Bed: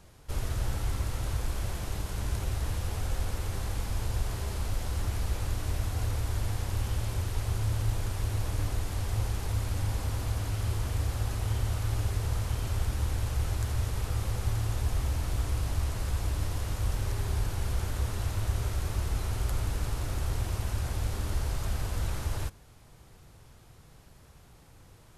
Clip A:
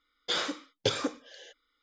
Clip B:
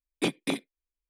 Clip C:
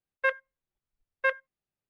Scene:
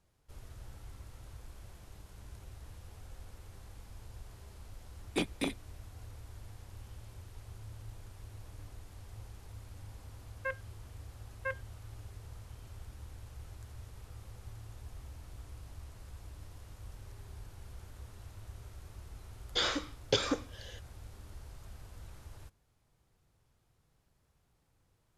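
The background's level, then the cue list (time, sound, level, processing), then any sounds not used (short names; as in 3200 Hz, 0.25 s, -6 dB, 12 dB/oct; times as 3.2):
bed -18.5 dB
4.94 add B -5 dB
10.21 add C -14 dB + comb 3.9 ms
19.27 add A -1 dB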